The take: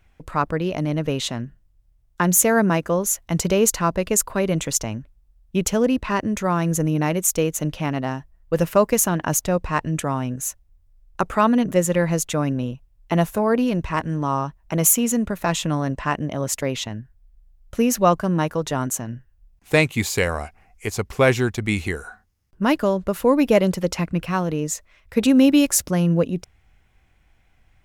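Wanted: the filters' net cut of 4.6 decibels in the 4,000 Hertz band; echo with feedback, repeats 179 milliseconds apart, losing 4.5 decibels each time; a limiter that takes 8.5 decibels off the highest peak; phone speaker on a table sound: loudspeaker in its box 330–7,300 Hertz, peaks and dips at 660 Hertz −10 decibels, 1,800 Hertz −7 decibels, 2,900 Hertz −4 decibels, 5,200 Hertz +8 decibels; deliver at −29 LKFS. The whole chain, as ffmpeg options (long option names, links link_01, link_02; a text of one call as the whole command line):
ffmpeg -i in.wav -af "equalizer=frequency=4000:width_type=o:gain=-8.5,alimiter=limit=-12dB:level=0:latency=1,highpass=frequency=330:width=0.5412,highpass=frequency=330:width=1.3066,equalizer=frequency=660:width_type=q:width=4:gain=-10,equalizer=frequency=1800:width_type=q:width=4:gain=-7,equalizer=frequency=2900:width_type=q:width=4:gain=-4,equalizer=frequency=5200:width_type=q:width=4:gain=8,lowpass=frequency=7300:width=0.5412,lowpass=frequency=7300:width=1.3066,aecho=1:1:179|358|537|716|895|1074|1253|1432|1611:0.596|0.357|0.214|0.129|0.0772|0.0463|0.0278|0.0167|0.01,volume=-1.5dB" out.wav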